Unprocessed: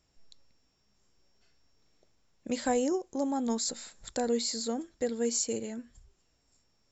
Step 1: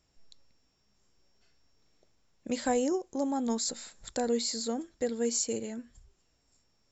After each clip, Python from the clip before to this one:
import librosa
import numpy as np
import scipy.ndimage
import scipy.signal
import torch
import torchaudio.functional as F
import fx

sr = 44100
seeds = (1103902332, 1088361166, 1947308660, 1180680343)

y = x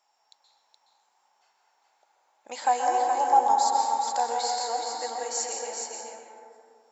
y = fx.highpass_res(x, sr, hz=840.0, q=7.4)
y = y + 10.0 ** (-5.0 / 20.0) * np.pad(y, (int(421 * sr / 1000.0), 0))[:len(y)]
y = fx.rev_plate(y, sr, seeds[0], rt60_s=2.1, hf_ratio=0.35, predelay_ms=115, drr_db=0.5)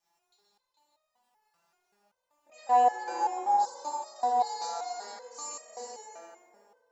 y = fx.dmg_crackle(x, sr, seeds[1], per_s=330.0, level_db=-55.0)
y = fx.rev_fdn(y, sr, rt60_s=2.4, lf_ratio=1.4, hf_ratio=0.3, size_ms=15.0, drr_db=-7.5)
y = fx.resonator_held(y, sr, hz=5.2, low_hz=170.0, high_hz=620.0)